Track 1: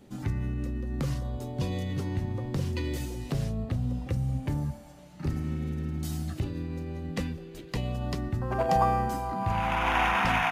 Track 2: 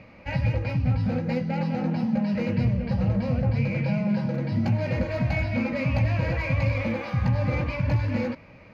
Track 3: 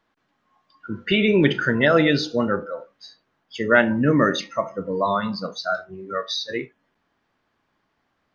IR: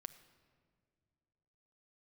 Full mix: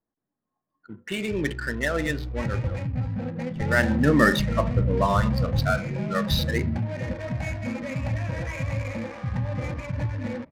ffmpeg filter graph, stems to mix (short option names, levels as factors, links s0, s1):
-filter_complex "[0:a]asubboost=boost=10.5:cutoff=140,adelay=1050,volume=0.282[s0];[1:a]adelay=2100,volume=0.596[s1];[2:a]volume=0.841,afade=t=in:st=3.71:d=0.28:silence=0.354813,asplit=2[s2][s3];[s3]apad=whole_len=509910[s4];[s0][s4]sidechaingate=range=0.0224:threshold=0.00501:ratio=16:detection=peak[s5];[s5][s1][s2]amix=inputs=3:normalize=0,equalizer=f=1800:t=o:w=0.21:g=7.5,adynamicsmooth=sensitivity=8:basefreq=640"